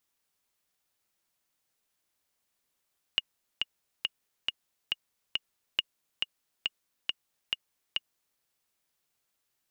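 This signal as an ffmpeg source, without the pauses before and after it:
-f lavfi -i "aevalsrc='pow(10,(-11.5-3.5*gte(mod(t,6*60/138),60/138))/20)*sin(2*PI*2860*mod(t,60/138))*exp(-6.91*mod(t,60/138)/0.03)':d=5.21:s=44100"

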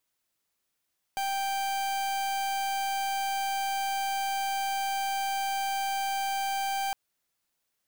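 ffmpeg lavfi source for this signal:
-f lavfi -i "aevalsrc='0.0316*(2*lt(mod(785*t,1),0.42)-1)':d=5.76:s=44100"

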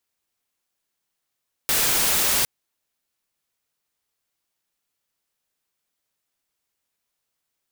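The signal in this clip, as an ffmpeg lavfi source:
-f lavfi -i "anoisesrc=c=white:a=0.163:d=0.76:r=44100:seed=1"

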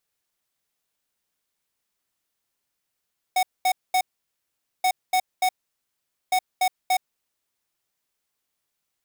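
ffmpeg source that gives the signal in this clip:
-f lavfi -i "aevalsrc='0.1*(2*lt(mod(742*t,1),0.5)-1)*clip(min(mod(mod(t,1.48),0.29),0.07-mod(mod(t,1.48),0.29))/0.005,0,1)*lt(mod(t,1.48),0.87)':d=4.44:s=44100"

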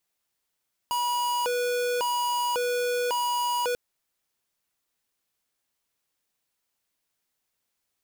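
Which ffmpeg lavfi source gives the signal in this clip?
-f lavfi -i "aevalsrc='0.0473*(2*lt(mod((729*t+240/0.91*(0.5-abs(mod(0.91*t,1)-0.5))),1),0.5)-1)':d=2.84:s=44100"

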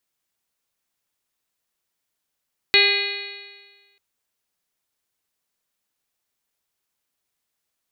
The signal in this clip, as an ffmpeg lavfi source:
-f lavfi -i "aevalsrc='0.0841*pow(10,-3*t/1.45)*sin(2*PI*399.34*t)+0.0282*pow(10,-3*t/1.45)*sin(2*PI*800.71*t)+0.0168*pow(10,-3*t/1.45)*sin(2*PI*1206.12*t)+0.0501*pow(10,-3*t/1.45)*sin(2*PI*1617.56*t)+0.133*pow(10,-3*t/1.45)*sin(2*PI*2036.95*t)+0.168*pow(10,-3*t/1.45)*sin(2*PI*2466.17*t)+0.0631*pow(10,-3*t/1.45)*sin(2*PI*2907*t)+0.0473*pow(10,-3*t/1.45)*sin(2*PI*3361.16*t)+0.133*pow(10,-3*t/1.45)*sin(2*PI*3830.27*t)+0.15*pow(10,-3*t/1.45)*sin(2*PI*4315.84*t)':d=1.24:s=44100"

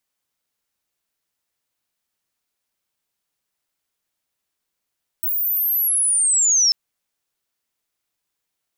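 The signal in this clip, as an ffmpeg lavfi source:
-f lavfi -i "aevalsrc='pow(10,(-19+6.5*t/1.49)/20)*sin(2*PI*(16000*t-10800*t*t/(2*1.49)))':d=1.49:s=44100"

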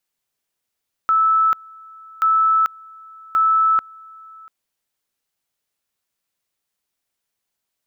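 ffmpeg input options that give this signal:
-f lavfi -i "aevalsrc='pow(10,(-12.5-26*gte(mod(t,1.13),0.44))/20)*sin(2*PI*1310*t)':d=3.39:s=44100"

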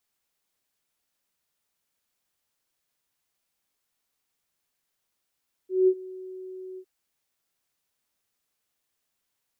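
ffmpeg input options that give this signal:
-f lavfi -i "aevalsrc='0.188*sin(2*PI*373*t)':d=1.156:s=44100,afade=t=in:d=0.187,afade=t=out:st=0.187:d=0.061:silence=0.0794,afade=t=out:st=1.09:d=0.066"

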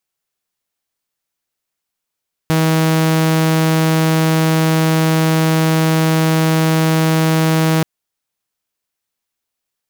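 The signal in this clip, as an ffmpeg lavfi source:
-f lavfi -i "aevalsrc='0.355*(2*mod(160*t,1)-1)':d=5.33:s=44100"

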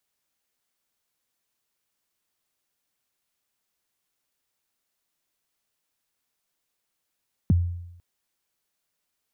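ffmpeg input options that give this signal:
-f lavfi -i "aevalsrc='0.211*pow(10,-3*t/0.85)*sin(2*PI*(250*0.021/log(87/250)*(exp(log(87/250)*min(t,0.021)/0.021)-1)+87*max(t-0.021,0)))':d=0.5:s=44100"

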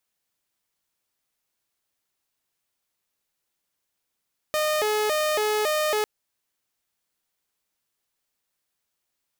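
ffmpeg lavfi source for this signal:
-f lavfi -i "aevalsrc='0.112*(2*mod((518.5*t+93.5/1.8*(0.5-abs(mod(1.8*t,1)-0.5))),1)-1)':d=1.5:s=44100"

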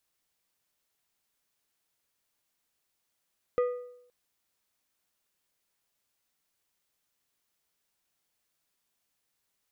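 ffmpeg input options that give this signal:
-f lavfi -i "aevalsrc='0.0891*pow(10,-3*t/0.75)*sin(2*PI*492*t)+0.0251*pow(10,-3*t/0.57)*sin(2*PI*1230*t)+0.00708*pow(10,-3*t/0.495)*sin(2*PI*1968*t)+0.002*pow(10,-3*t/0.463)*sin(2*PI*2460*t)+0.000562*pow(10,-3*t/0.428)*sin(2*PI*3198*t)':d=0.52:s=44100"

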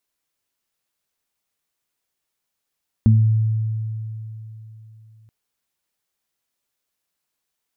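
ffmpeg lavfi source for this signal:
-f lavfi -i "aevalsrc='0.335*pow(10,-3*t/3.45)*sin(2*PI*110*t)+0.251*pow(10,-3*t/0.39)*sin(2*PI*220*t)':d=2.23:s=44100"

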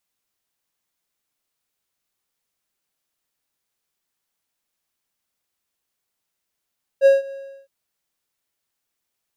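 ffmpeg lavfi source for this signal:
-f lavfi -i "aevalsrc='0.531*(1-4*abs(mod(547*t+0.25,1)-0.5))':d=0.664:s=44100,afade=t=in:d=0.048,afade=t=out:st=0.048:d=0.162:silence=0.075,afade=t=out:st=0.3:d=0.364"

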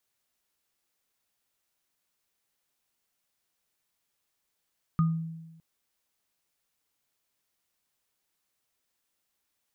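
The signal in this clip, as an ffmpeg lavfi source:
-f lavfi -i "aevalsrc='0.112*pow(10,-3*t/1.1)*sin(2*PI*163*t)+0.0355*pow(10,-3*t/0.27)*sin(2*PI*1230*t)':d=0.61:s=44100"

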